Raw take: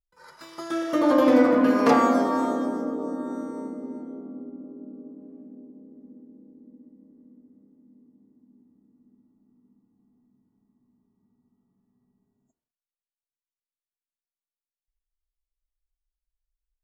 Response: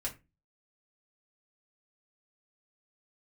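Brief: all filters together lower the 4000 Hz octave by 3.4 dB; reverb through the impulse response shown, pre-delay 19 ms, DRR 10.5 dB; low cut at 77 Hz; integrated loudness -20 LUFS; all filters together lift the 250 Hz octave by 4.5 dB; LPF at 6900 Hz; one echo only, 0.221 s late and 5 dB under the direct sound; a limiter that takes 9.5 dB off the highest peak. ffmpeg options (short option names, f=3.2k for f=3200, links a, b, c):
-filter_complex "[0:a]highpass=77,lowpass=6.9k,equalizer=f=250:t=o:g=5,equalizer=f=4k:t=o:g=-4,alimiter=limit=-12.5dB:level=0:latency=1,aecho=1:1:221:0.562,asplit=2[a][b];[1:a]atrim=start_sample=2205,adelay=19[c];[b][c]afir=irnorm=-1:irlink=0,volume=-12dB[d];[a][d]amix=inputs=2:normalize=0,volume=2dB"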